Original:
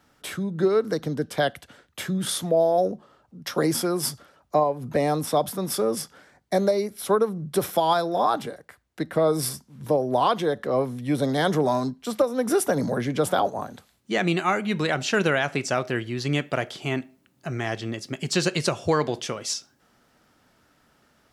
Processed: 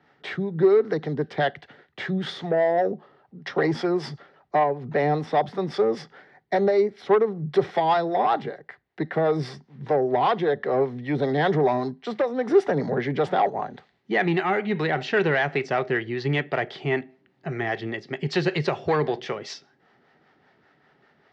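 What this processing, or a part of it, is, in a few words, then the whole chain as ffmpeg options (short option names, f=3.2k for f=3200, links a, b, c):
guitar amplifier with harmonic tremolo: -filter_complex "[0:a]acrossover=split=470[a][b];[a]aeval=exprs='val(0)*(1-0.5/2+0.5/2*cos(2*PI*5.1*n/s))':c=same[c];[b]aeval=exprs='val(0)*(1-0.5/2-0.5/2*cos(2*PI*5.1*n/s))':c=same[d];[c][d]amix=inputs=2:normalize=0,asoftclip=type=tanh:threshold=-18.5dB,highpass=100,equalizer=f=150:t=q:w=4:g=6,equalizer=f=400:t=q:w=4:g=10,equalizer=f=780:t=q:w=4:g=8,equalizer=f=1.9k:t=q:w=4:g=10,lowpass=f=4.4k:w=0.5412,lowpass=f=4.4k:w=1.3066"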